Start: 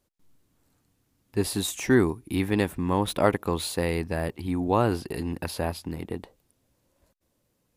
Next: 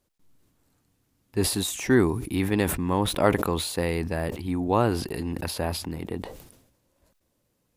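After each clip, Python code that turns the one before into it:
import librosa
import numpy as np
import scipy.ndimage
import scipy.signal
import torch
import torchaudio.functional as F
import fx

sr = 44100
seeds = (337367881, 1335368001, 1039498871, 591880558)

y = fx.sustainer(x, sr, db_per_s=64.0)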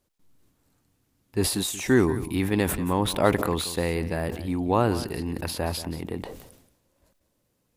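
y = x + 10.0 ** (-14.5 / 20.0) * np.pad(x, (int(180 * sr / 1000.0), 0))[:len(x)]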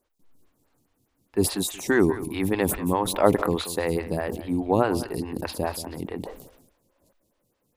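y = fx.stagger_phaser(x, sr, hz=4.8)
y = F.gain(torch.from_numpy(y), 3.5).numpy()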